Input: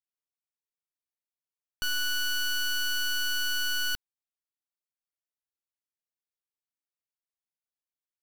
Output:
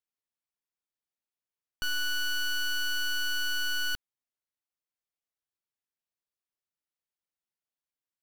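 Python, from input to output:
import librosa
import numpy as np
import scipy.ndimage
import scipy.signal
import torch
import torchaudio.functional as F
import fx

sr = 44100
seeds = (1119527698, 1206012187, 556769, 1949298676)

y = fx.high_shelf(x, sr, hz=4400.0, db=-5.0)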